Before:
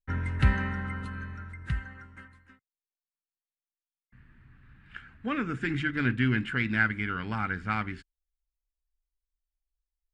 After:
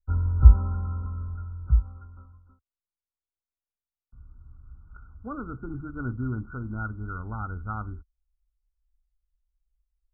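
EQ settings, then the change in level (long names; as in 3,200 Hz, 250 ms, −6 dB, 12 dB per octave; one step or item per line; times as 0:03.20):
linear-phase brick-wall low-pass 1,500 Hz
low shelf with overshoot 100 Hz +13.5 dB, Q 1.5
−3.5 dB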